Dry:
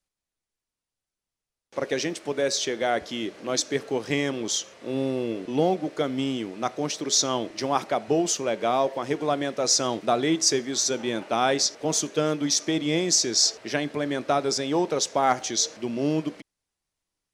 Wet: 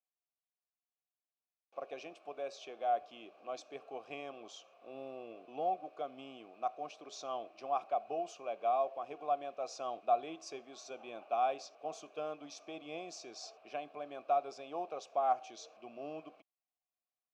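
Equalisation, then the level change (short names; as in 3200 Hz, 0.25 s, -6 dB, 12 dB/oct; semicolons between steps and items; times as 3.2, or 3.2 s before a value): vowel filter a; low shelf 120 Hz +6.5 dB; high shelf 11000 Hz +6 dB; -4.0 dB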